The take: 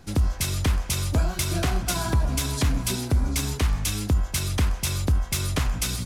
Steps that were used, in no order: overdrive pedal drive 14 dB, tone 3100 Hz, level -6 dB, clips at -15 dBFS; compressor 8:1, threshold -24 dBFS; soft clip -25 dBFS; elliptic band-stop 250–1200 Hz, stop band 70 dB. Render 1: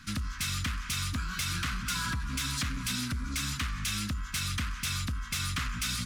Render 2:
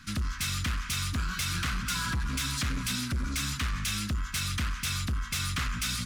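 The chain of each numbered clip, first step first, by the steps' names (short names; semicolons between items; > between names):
compressor > overdrive pedal > elliptic band-stop > soft clip; overdrive pedal > elliptic band-stop > soft clip > compressor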